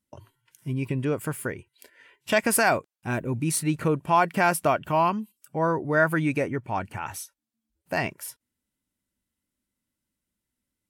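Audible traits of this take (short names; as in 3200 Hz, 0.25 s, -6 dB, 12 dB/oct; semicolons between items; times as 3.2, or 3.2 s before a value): noise floor -85 dBFS; spectral tilt -5.0 dB/oct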